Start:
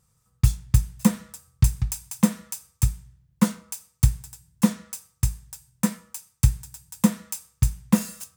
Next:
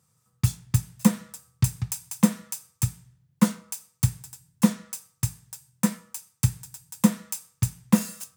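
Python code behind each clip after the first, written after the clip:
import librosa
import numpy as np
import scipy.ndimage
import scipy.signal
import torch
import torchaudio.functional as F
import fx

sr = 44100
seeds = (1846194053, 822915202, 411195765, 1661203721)

y = scipy.signal.sosfilt(scipy.signal.butter(4, 100.0, 'highpass', fs=sr, output='sos'), x)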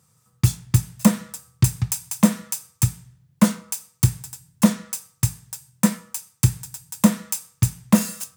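y = 10.0 ** (-11.0 / 20.0) * np.tanh(x / 10.0 ** (-11.0 / 20.0))
y = y * 10.0 ** (6.5 / 20.0)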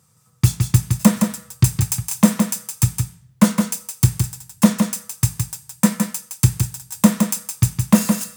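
y = x + 10.0 ** (-5.5 / 20.0) * np.pad(x, (int(165 * sr / 1000.0), 0))[:len(x)]
y = y * 10.0 ** (2.5 / 20.0)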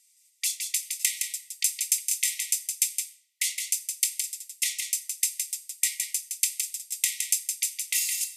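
y = fx.brickwall_bandpass(x, sr, low_hz=1900.0, high_hz=14000.0)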